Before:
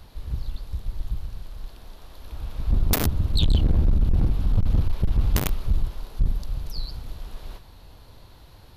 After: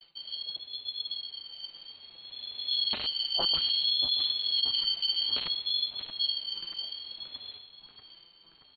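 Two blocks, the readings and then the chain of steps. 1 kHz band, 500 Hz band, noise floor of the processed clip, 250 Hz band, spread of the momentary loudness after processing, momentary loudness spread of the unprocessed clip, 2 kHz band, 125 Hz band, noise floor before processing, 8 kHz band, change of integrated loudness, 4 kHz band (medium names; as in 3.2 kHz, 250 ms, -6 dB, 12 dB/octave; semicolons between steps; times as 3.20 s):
-6.5 dB, -10.5 dB, -59 dBFS, -22.5 dB, 17 LU, 19 LU, -7.0 dB, under -30 dB, -49 dBFS, under -40 dB, -2.0 dB, +12.5 dB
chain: expander -41 dBFS; frequency inversion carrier 3.8 kHz; tilt shelf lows +4.5 dB, about 1.3 kHz; comb 6 ms, depth 61%; on a send: tape echo 631 ms, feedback 75%, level -8.5 dB, low-pass 2.7 kHz; on the sum: ring modulator with a swept carrier 550 Hz, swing 25%, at 0.6 Hz; trim -7 dB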